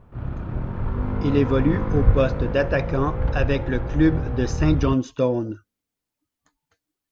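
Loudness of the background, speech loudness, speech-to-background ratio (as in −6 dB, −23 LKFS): −26.5 LKFS, −23.5 LKFS, 3.0 dB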